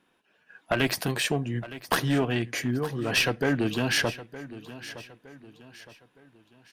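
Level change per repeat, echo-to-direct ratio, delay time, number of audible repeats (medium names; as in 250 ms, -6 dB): -8.0 dB, -15.0 dB, 914 ms, 3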